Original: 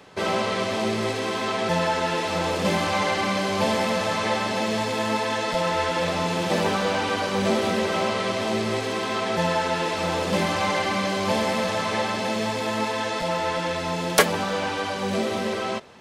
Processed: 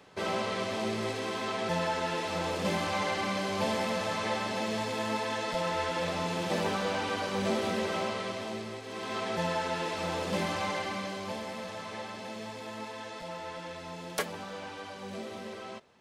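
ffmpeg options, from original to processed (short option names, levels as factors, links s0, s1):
-af "volume=1.12,afade=t=out:st=7.91:d=0.92:silence=0.354813,afade=t=in:st=8.83:d=0.34:silence=0.375837,afade=t=out:st=10.52:d=0.88:silence=0.446684"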